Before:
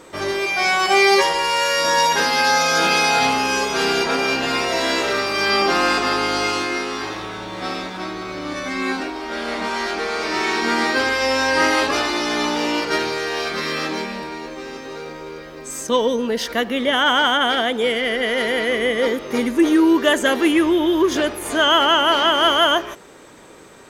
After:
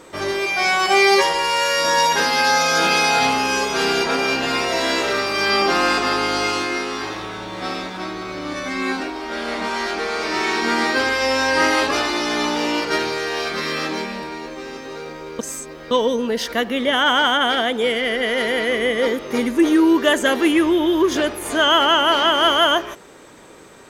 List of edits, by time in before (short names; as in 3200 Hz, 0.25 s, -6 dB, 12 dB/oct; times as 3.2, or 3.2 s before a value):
15.39–15.91 reverse